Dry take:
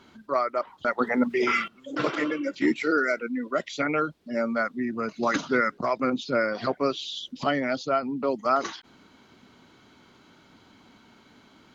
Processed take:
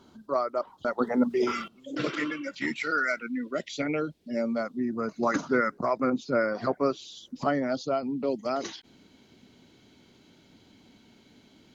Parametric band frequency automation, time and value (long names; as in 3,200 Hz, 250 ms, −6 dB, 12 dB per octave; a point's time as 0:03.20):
parametric band −13 dB 1.1 octaves
0:01.62 2,100 Hz
0:02.51 360 Hz
0:03.08 360 Hz
0:03.63 1,200 Hz
0:04.32 1,200 Hz
0:05.21 3,200 Hz
0:07.44 3,200 Hz
0:08.21 1,200 Hz